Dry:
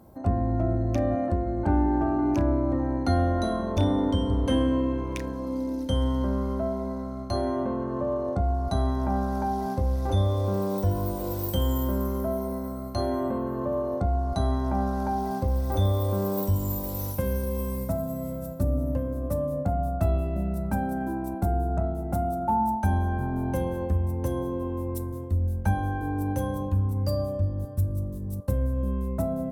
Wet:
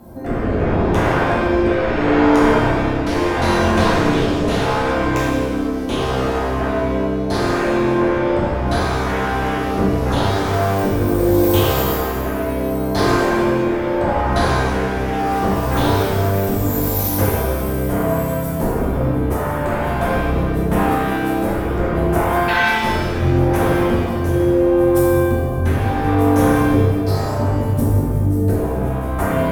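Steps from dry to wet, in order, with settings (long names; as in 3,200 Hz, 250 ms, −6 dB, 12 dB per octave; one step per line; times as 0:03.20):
sine wavefolder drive 14 dB, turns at −11.5 dBFS
rotating-speaker cabinet horn 0.75 Hz
reverb with rising layers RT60 1.2 s, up +7 semitones, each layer −8 dB, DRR −5.5 dB
level −7 dB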